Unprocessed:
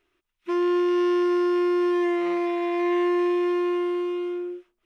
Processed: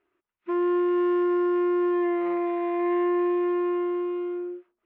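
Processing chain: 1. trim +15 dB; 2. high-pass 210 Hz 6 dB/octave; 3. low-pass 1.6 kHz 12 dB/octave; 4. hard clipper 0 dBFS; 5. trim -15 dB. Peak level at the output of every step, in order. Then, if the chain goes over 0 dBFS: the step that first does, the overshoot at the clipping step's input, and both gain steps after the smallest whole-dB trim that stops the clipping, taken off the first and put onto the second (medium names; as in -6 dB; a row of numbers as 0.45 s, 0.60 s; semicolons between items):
-2.0 dBFS, -2.0 dBFS, -2.5 dBFS, -2.5 dBFS, -17.5 dBFS; nothing clips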